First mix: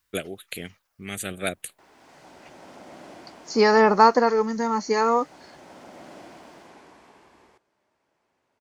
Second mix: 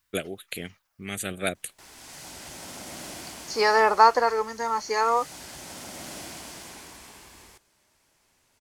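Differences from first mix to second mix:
second voice: add high-pass filter 550 Hz 12 dB per octave
background: remove resonant band-pass 530 Hz, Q 0.58

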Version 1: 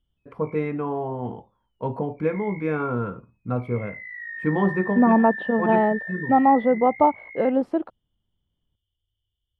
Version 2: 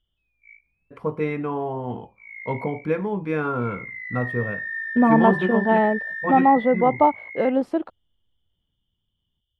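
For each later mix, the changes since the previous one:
first voice: entry +0.65 s
master: add high-shelf EQ 2,500 Hz +9.5 dB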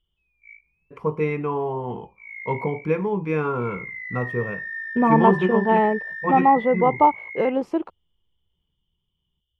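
master: add EQ curve with evenly spaced ripples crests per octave 0.76, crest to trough 7 dB

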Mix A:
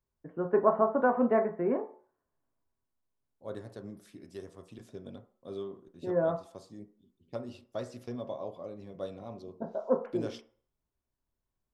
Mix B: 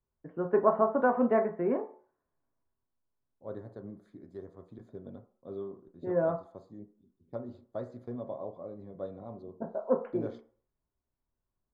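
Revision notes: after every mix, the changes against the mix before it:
second voice: add moving average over 16 samples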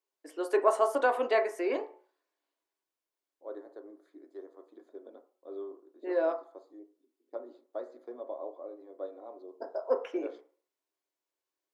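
first voice: remove low-pass filter 1,500 Hz 24 dB per octave
master: add elliptic high-pass filter 300 Hz, stop band 40 dB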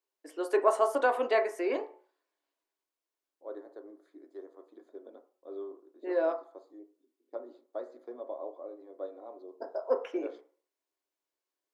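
nothing changed

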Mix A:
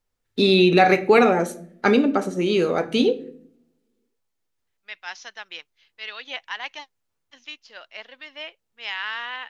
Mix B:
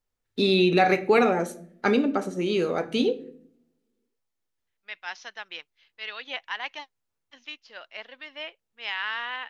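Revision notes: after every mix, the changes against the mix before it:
first voice −4.5 dB
second voice: add high-frequency loss of the air 90 metres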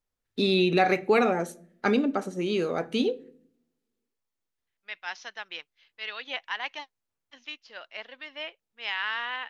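first voice: send −8.0 dB

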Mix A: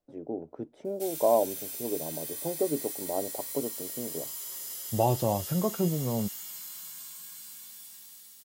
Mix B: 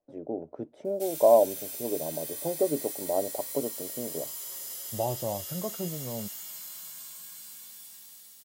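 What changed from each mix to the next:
second voice −8.0 dB
master: add parametric band 600 Hz +6 dB 0.44 octaves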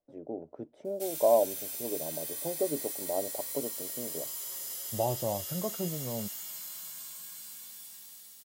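first voice −4.5 dB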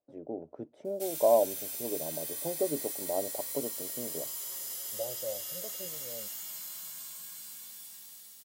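second voice: add formant resonators in series e

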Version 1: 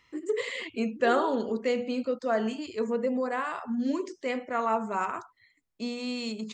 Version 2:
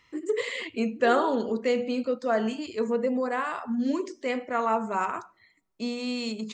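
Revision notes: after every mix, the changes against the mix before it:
reverb: on, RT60 0.75 s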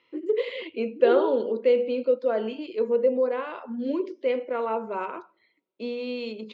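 second voice +5.5 dB
master: add loudspeaker in its box 290–3,600 Hz, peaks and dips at 350 Hz +5 dB, 520 Hz +8 dB, 740 Hz −7 dB, 1,200 Hz −7 dB, 1,800 Hz −10 dB

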